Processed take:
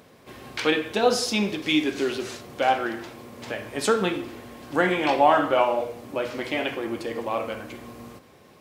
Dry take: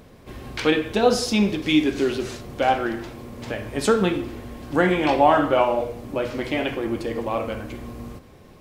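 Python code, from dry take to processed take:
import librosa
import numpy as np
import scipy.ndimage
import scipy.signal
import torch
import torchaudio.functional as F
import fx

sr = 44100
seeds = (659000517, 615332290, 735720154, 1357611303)

y = scipy.signal.sosfilt(scipy.signal.butter(2, 93.0, 'highpass', fs=sr, output='sos'), x)
y = fx.low_shelf(y, sr, hz=340.0, db=-8.0)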